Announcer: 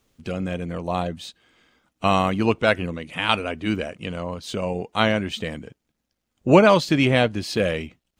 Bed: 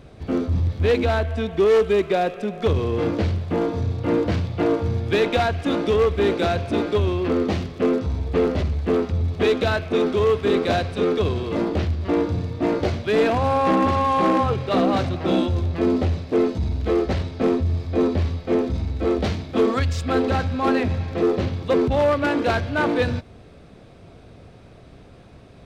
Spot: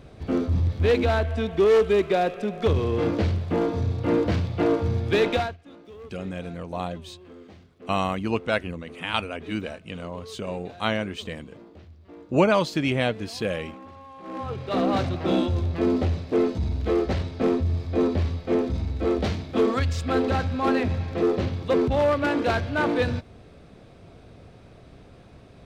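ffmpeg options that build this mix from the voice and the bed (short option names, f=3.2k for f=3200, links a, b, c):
-filter_complex "[0:a]adelay=5850,volume=-5.5dB[a];[1:a]volume=21dB,afade=t=out:st=5.31:d=0.26:silence=0.0668344,afade=t=in:st=14.23:d=0.73:silence=0.0749894[b];[a][b]amix=inputs=2:normalize=0"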